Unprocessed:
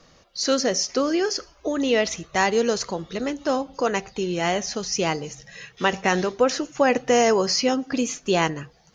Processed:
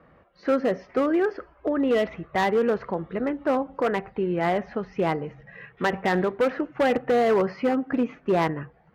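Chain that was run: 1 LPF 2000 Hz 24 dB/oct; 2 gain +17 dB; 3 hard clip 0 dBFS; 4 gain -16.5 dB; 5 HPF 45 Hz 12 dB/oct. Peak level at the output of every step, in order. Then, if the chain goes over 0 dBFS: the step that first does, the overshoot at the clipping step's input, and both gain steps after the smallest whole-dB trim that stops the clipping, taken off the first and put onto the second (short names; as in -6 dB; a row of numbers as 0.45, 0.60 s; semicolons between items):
-7.5, +9.5, 0.0, -16.5, -14.5 dBFS; step 2, 9.5 dB; step 2 +7 dB, step 4 -6.5 dB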